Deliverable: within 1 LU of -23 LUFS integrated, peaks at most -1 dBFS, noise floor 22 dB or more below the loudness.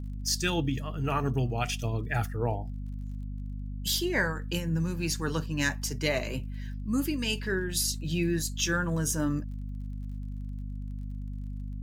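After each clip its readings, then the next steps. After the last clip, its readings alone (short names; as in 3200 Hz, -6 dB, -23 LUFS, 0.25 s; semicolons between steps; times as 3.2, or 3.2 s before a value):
ticks 30/s; hum 50 Hz; harmonics up to 250 Hz; hum level -33 dBFS; loudness -31.0 LUFS; peak -12.0 dBFS; loudness target -23.0 LUFS
-> de-click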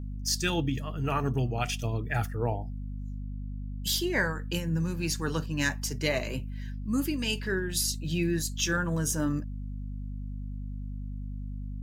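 ticks 0/s; hum 50 Hz; harmonics up to 250 Hz; hum level -34 dBFS
-> de-hum 50 Hz, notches 5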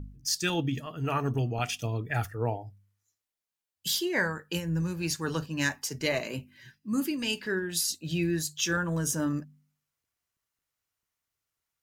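hum none; loudness -30.5 LUFS; peak -12.5 dBFS; loudness target -23.0 LUFS
-> gain +7.5 dB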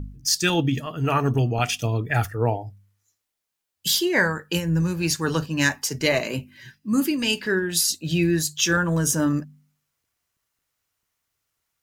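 loudness -23.0 LUFS; peak -5.0 dBFS; noise floor -82 dBFS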